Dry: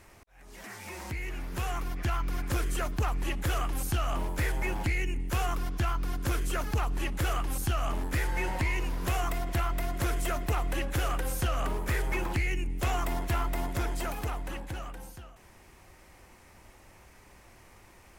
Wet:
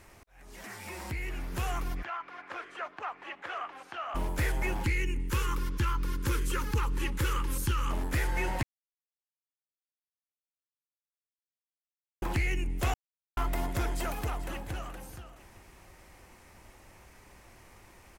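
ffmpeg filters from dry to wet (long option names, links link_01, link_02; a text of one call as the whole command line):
ffmpeg -i in.wav -filter_complex "[0:a]asettb=1/sr,asplit=3[link_01][link_02][link_03];[link_01]atrim=end=0.744[link_04];[link_02]atrim=start=0.74:end=1.36,asetpts=PTS-STARTPTS,afade=type=in:duration=0.004:curve=qsin,afade=type=out:start_time=0.616:duration=0.004:curve=qsin,bandreject=frequency=6300:width=12[link_05];[link_03]atrim=start=1.356[link_06];[link_04][link_05]acrossfade=duration=0.004:curve1=hsin:curve2=qsin[link_07];[link_07][link_06]acrossfade=duration=0.004:curve1=qsin:curve2=hsin,asplit=3[link_08][link_09][link_10];[link_08]afade=type=out:start_time=2.02:duration=0.02[link_11];[link_09]highpass=750,lowpass=2100,afade=type=in:start_time=2.02:duration=0.02,afade=type=out:start_time=4.14:duration=0.02[link_12];[link_10]afade=type=in:start_time=4.14:duration=0.02[link_13];[link_11][link_12][link_13]amix=inputs=3:normalize=0,asettb=1/sr,asplit=3[link_14][link_15][link_16];[link_14]atrim=end=4.804[link_17];[link_15]atrim=start=4.8:end=7.91,asetpts=PTS-STARTPTS,afade=type=in:duration=0.004:curve=qsin,afade=type=out:start_time=3.106:duration=0.004:curve=qsin,asuperstop=centerf=680:order=20:qfactor=2.6[link_18];[link_16]atrim=start=7.906[link_19];[link_17][link_18]acrossfade=duration=0.004:curve1=hsin:curve2=qsin[link_20];[link_20][link_19]acrossfade=duration=0.004:curve1=qsin:curve2=hsin,asplit=2[link_21][link_22];[link_22]afade=type=in:start_time=13.96:duration=0.01,afade=type=out:start_time=14.73:duration=0.01,aecho=0:1:430|860|1290|1720:0.188365|0.075346|0.0301384|0.0120554[link_23];[link_21][link_23]amix=inputs=2:normalize=0,asplit=5[link_24][link_25][link_26][link_27][link_28];[link_24]atrim=end=8.63,asetpts=PTS-STARTPTS,afade=type=out:start_time=8.626:duration=0.004:curve=hsin[link_29];[link_25]atrim=start=8.63:end=12.22,asetpts=PTS-STARTPTS,volume=0[link_30];[link_26]atrim=start=12.22:end=12.94,asetpts=PTS-STARTPTS,afade=type=in:duration=0.004:curve=hsin,afade=type=out:start_time=0.716:duration=0.004:curve=hsin[link_31];[link_27]atrim=start=12.94:end=13.37,asetpts=PTS-STARTPTS,volume=0[link_32];[link_28]atrim=start=13.37,asetpts=PTS-STARTPTS,afade=type=in:duration=0.004:curve=hsin[link_33];[link_29][link_30][link_31][link_32][link_33]concat=n=5:v=0:a=1" out.wav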